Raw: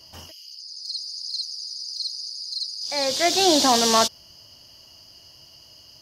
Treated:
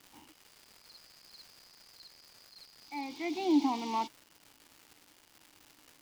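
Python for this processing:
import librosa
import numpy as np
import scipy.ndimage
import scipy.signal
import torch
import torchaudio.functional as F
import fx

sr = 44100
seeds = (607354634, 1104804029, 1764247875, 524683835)

y = fx.vowel_filter(x, sr, vowel='u')
y = fx.dmg_crackle(y, sr, seeds[0], per_s=500.0, level_db=-45.0)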